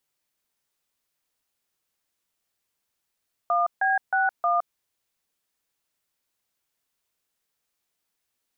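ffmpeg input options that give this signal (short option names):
-f lavfi -i "aevalsrc='0.0794*clip(min(mod(t,0.313),0.165-mod(t,0.313))/0.002,0,1)*(eq(floor(t/0.313),0)*(sin(2*PI*697*mod(t,0.313))+sin(2*PI*1209*mod(t,0.313)))+eq(floor(t/0.313),1)*(sin(2*PI*770*mod(t,0.313))+sin(2*PI*1633*mod(t,0.313)))+eq(floor(t/0.313),2)*(sin(2*PI*770*mod(t,0.313))+sin(2*PI*1477*mod(t,0.313)))+eq(floor(t/0.313),3)*(sin(2*PI*697*mod(t,0.313))+sin(2*PI*1209*mod(t,0.313))))':d=1.252:s=44100"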